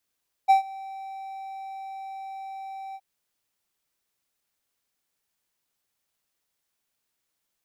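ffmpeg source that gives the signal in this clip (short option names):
-f lavfi -i "aevalsrc='0.316*(1-4*abs(mod(775*t+0.25,1)-0.5))':d=2.52:s=44100,afade=t=in:d=0.023,afade=t=out:st=0.023:d=0.119:silence=0.0708,afade=t=out:st=2.47:d=0.05"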